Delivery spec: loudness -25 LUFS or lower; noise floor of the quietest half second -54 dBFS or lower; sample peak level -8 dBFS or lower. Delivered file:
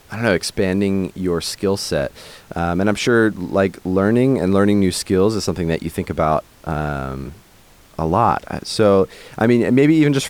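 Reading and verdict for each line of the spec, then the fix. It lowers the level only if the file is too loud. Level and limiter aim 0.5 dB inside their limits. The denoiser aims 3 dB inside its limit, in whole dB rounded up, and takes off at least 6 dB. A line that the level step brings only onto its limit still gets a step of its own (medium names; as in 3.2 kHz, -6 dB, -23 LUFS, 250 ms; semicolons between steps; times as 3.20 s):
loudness -18.0 LUFS: fail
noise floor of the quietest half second -48 dBFS: fail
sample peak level -3.0 dBFS: fail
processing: trim -7.5 dB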